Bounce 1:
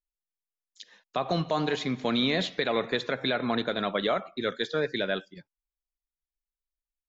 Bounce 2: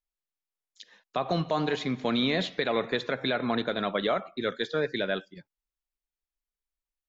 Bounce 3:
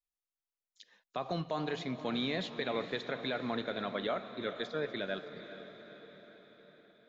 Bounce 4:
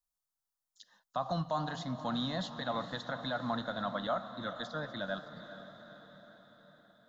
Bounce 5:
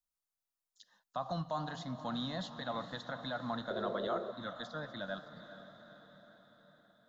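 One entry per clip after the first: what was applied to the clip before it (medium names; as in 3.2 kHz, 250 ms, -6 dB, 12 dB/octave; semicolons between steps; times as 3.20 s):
treble shelf 5.6 kHz -5.5 dB
echo that smears into a reverb 463 ms, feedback 58%, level -11.5 dB; trim -8 dB
static phaser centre 980 Hz, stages 4; trim +5 dB
painted sound noise, 3.70–4.32 s, 330–680 Hz -36 dBFS; trim -3.5 dB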